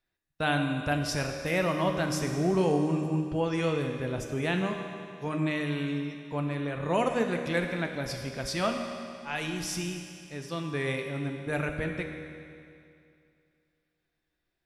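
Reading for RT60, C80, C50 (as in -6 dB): 2.5 s, 6.0 dB, 5.0 dB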